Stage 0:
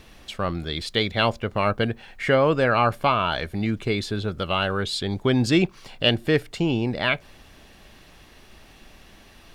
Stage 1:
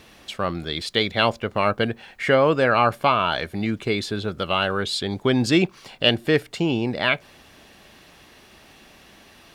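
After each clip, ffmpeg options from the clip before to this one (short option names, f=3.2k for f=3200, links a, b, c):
-af "highpass=f=150:p=1,volume=2dB"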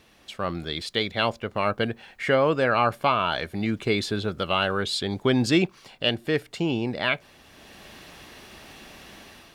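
-af "dynaudnorm=f=180:g=5:m=12dB,volume=-8dB"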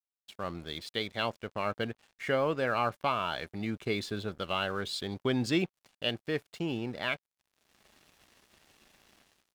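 -af "aeval=exprs='sgn(val(0))*max(abs(val(0))-0.00596,0)':c=same,volume=-7.5dB"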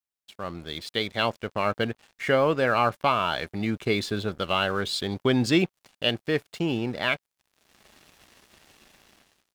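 -af "dynaudnorm=f=310:g=5:m=5.5dB,volume=1.5dB"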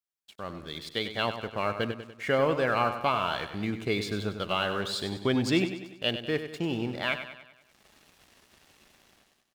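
-af "aecho=1:1:97|194|291|388|485|582:0.316|0.161|0.0823|0.0419|0.0214|0.0109,volume=-4dB"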